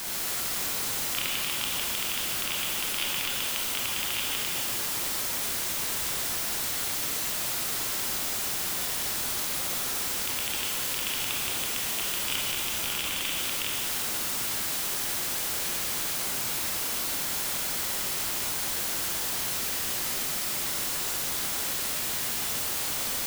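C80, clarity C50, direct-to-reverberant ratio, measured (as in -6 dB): -0.5 dB, -2.0 dB, -4.0 dB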